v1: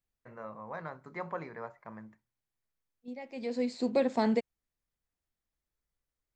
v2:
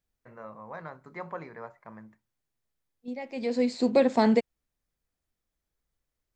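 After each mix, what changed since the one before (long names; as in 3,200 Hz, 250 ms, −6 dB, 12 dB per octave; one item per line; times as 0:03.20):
second voice +6.0 dB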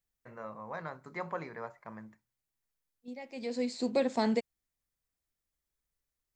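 second voice −7.5 dB
master: add high-shelf EQ 4,500 Hz +9.5 dB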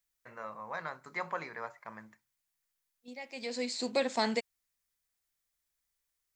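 master: add tilt shelving filter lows −6.5 dB, about 710 Hz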